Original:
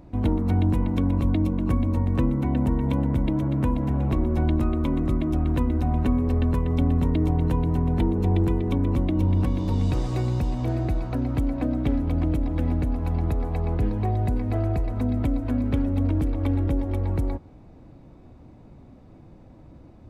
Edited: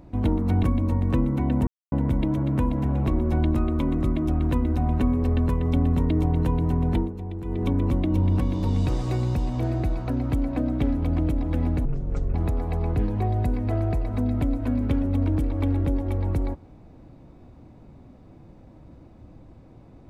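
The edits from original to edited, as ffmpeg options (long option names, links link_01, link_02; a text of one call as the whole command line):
ffmpeg -i in.wav -filter_complex "[0:a]asplit=8[link_01][link_02][link_03][link_04][link_05][link_06][link_07][link_08];[link_01]atrim=end=0.632[link_09];[link_02]atrim=start=1.678:end=2.72,asetpts=PTS-STARTPTS,afade=type=out:start_time=1.038:duration=0.004:curve=hsin[link_10];[link_03]atrim=start=2.72:end=2.97,asetpts=PTS-STARTPTS,volume=0[link_11];[link_04]atrim=start=2.97:end=8.18,asetpts=PTS-STARTPTS,afade=type=in:duration=0.004:curve=hsin,afade=type=out:start_time=4.97:duration=0.24:curve=qsin:silence=0.251189[link_12];[link_05]atrim=start=8.18:end=8.49,asetpts=PTS-STARTPTS,volume=-12dB[link_13];[link_06]atrim=start=8.49:end=12.904,asetpts=PTS-STARTPTS,afade=type=in:duration=0.24:curve=qsin:silence=0.251189[link_14];[link_07]atrim=start=12.9:end=13.17,asetpts=PTS-STARTPTS,asetrate=24255,aresample=44100,atrim=end_sample=21649,asetpts=PTS-STARTPTS[link_15];[link_08]atrim=start=13.166[link_16];[link_10][link_11][link_12][link_13][link_14]concat=n=5:v=0:a=1[link_17];[link_09][link_17]acrossfade=duration=0.004:curve1=hsin:curve2=hsin[link_18];[link_18][link_15]acrossfade=duration=0.004:curve1=hsin:curve2=hsin[link_19];[link_19][link_16]acrossfade=duration=0.004:curve1=hsin:curve2=hsin" out.wav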